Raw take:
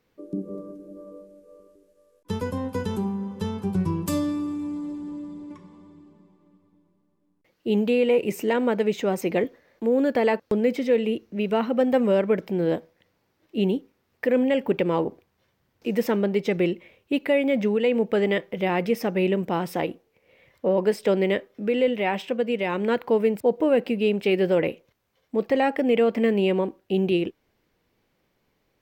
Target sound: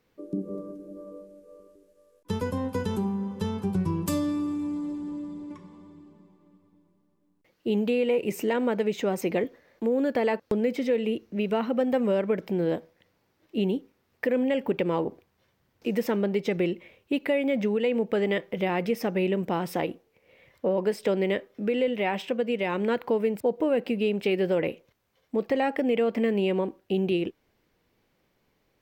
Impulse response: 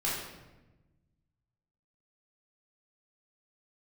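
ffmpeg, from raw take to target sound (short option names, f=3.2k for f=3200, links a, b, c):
-af "acompressor=threshold=-24dB:ratio=2"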